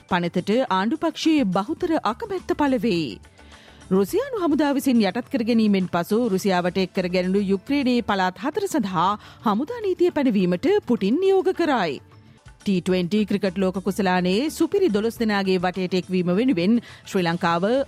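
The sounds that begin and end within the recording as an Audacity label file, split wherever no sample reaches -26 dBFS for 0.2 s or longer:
3.910000	9.150000	sound
9.460000	11.980000	sound
12.660000	16.790000	sound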